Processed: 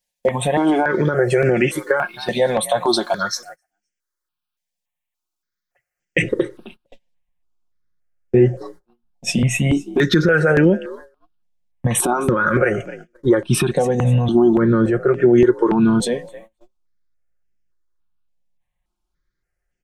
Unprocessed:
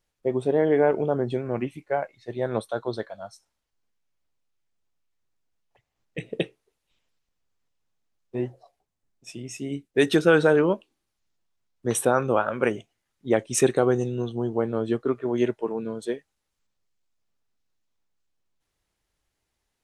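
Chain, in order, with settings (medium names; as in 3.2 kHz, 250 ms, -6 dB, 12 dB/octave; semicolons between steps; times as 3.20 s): tilt EQ +2 dB/octave, from 6.21 s -1.5 dB/octave; compression 12:1, threshold -27 dBFS, peak gain reduction 16.5 dB; frequency-shifting echo 260 ms, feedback 37%, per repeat +55 Hz, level -23.5 dB; gate -58 dBFS, range -25 dB; peaking EQ 1.6 kHz +6 dB 0.85 oct; comb 5.6 ms, depth 55%; loudness maximiser +24.5 dB; stepped phaser 3.5 Hz 350–3900 Hz; trim -2 dB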